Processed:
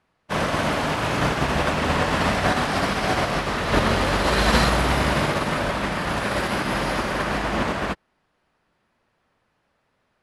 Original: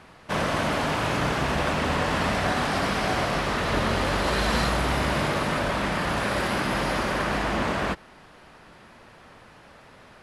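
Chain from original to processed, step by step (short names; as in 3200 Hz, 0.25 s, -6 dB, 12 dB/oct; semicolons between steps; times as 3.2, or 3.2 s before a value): upward expander 2.5:1, over -40 dBFS; gain +7.5 dB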